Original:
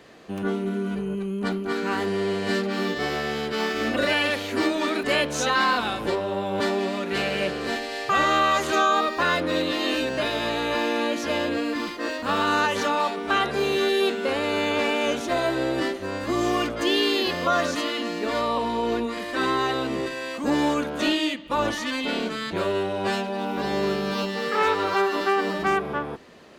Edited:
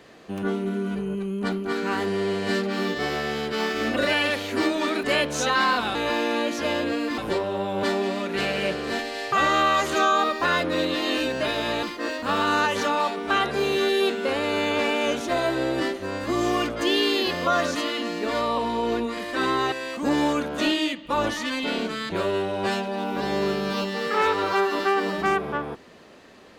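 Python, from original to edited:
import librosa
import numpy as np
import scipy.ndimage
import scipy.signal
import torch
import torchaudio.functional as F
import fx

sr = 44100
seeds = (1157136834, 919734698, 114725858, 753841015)

y = fx.edit(x, sr, fx.move(start_s=10.6, length_s=1.23, to_s=5.95),
    fx.cut(start_s=19.72, length_s=0.41), tone=tone)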